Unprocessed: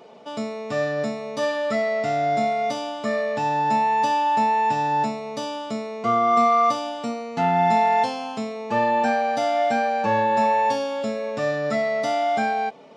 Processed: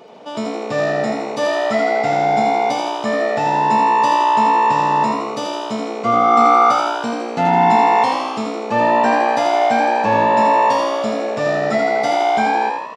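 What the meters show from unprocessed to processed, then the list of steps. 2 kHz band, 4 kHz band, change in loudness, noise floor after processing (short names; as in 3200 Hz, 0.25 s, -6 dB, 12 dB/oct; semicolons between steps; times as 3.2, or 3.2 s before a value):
+6.5 dB, +6.5 dB, +6.5 dB, -26 dBFS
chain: frequency-shifting echo 81 ms, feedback 59%, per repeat +61 Hz, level -5 dB; gain +4.5 dB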